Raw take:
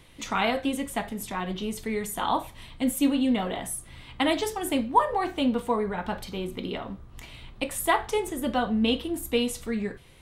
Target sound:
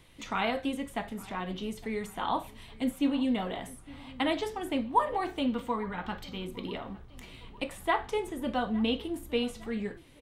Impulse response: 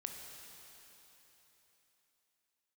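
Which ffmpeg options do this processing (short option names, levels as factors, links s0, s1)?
-filter_complex "[0:a]asettb=1/sr,asplit=3[s0][s1][s2];[s0]atrim=end=5.464[s3];[s1]atrim=start=5.46:end=6.47,asetpts=PTS-STARTPTS,afade=t=in:d=0.004:c=qsin,afade=t=out:st=1.006:d=0.004:c=qsin,equalizer=f=400:t=o:w=0.33:g=-6,equalizer=f=630:t=o:w=0.33:g=-8,equalizer=f=1250:t=o:w=0.33:g=3,equalizer=f=2000:t=o:w=0.33:g=3,equalizer=f=3150:t=o:w=0.33:g=4,equalizer=f=10000:t=o:w=0.33:g=-12[s4];[s2]atrim=start=6.466[s5];[s3][s4]acrossfade=d=0.004:c1=hsin:c2=qsin[s6];[s6][s5]acrossfade=d=0.004:c1=qsin:c2=hsin,acrossover=split=4300[s7][s8];[s7]aecho=1:1:860|1720|2580|3440:0.0891|0.0446|0.0223|0.0111[s9];[s8]acompressor=threshold=0.00447:ratio=6[s10];[s9][s10]amix=inputs=2:normalize=0,volume=0.596"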